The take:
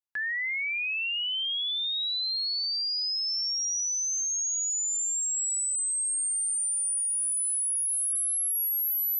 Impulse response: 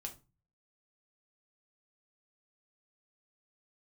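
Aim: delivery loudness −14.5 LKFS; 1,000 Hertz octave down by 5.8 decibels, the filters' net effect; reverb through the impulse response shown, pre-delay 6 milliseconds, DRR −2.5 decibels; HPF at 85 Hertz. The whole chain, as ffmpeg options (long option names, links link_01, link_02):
-filter_complex "[0:a]highpass=85,equalizer=frequency=1000:width_type=o:gain=-8.5,asplit=2[link_01][link_02];[1:a]atrim=start_sample=2205,adelay=6[link_03];[link_02][link_03]afir=irnorm=-1:irlink=0,volume=5.5dB[link_04];[link_01][link_04]amix=inputs=2:normalize=0,volume=7dB"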